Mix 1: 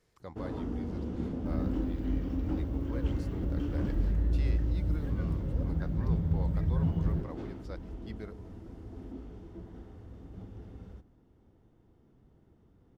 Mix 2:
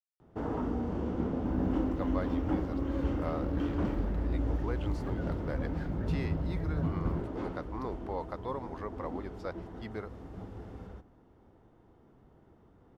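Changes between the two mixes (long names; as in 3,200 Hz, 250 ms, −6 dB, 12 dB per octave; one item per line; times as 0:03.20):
speech: entry +1.75 s
second sound −5.0 dB
master: add parametric band 950 Hz +9.5 dB 2.6 octaves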